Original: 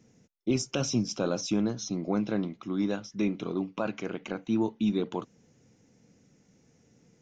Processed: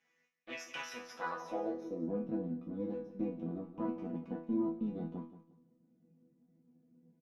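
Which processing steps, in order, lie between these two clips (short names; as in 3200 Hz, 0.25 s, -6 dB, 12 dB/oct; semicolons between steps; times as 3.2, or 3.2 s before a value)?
half-wave rectifier; in parallel at 0 dB: vocal rider 0.5 s; on the sum: resonator bank E3 fifth, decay 0.36 s; feedback echo 0.177 s, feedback 26%, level -13.5 dB; band-pass sweep 2000 Hz -> 220 Hz, 1.03–2.17; 3.6–4.72 bell 980 Hz +8.5 dB 0.31 oct; gain +14.5 dB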